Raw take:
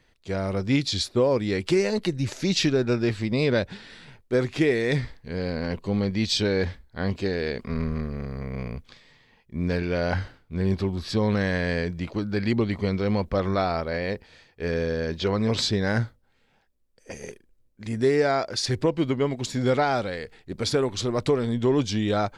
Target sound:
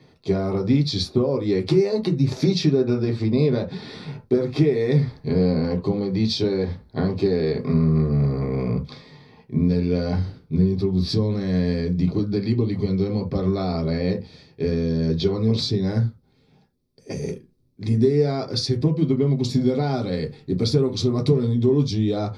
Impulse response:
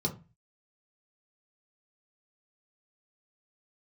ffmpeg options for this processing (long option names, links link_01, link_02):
-filter_complex "[0:a]asetnsamples=nb_out_samples=441:pad=0,asendcmd='9.68 equalizer g -4',equalizer=frequency=920:width=0.47:gain=5,acompressor=threshold=-30dB:ratio=6[link_01];[1:a]atrim=start_sample=2205,atrim=end_sample=3969[link_02];[link_01][link_02]afir=irnorm=-1:irlink=0"